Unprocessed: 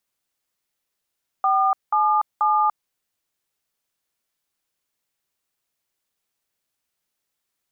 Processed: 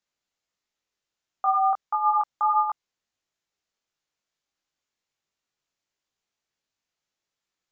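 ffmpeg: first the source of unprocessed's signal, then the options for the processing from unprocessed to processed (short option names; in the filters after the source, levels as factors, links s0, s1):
-f lavfi -i "aevalsrc='0.119*clip(min(mod(t,0.484),0.291-mod(t,0.484))/0.002,0,1)*(eq(floor(t/0.484),0)*(sin(2*PI*770*mod(t,0.484))+sin(2*PI*1209*mod(t,0.484)))+eq(floor(t/0.484),1)*(sin(2*PI*852*mod(t,0.484))+sin(2*PI*1209*mod(t,0.484)))+eq(floor(t/0.484),2)*(sin(2*PI*852*mod(t,0.484))+sin(2*PI*1209*mod(t,0.484))))':d=1.452:s=44100"
-af "flanger=delay=19.5:depth=2.6:speed=1.5,aresample=16000,aresample=44100"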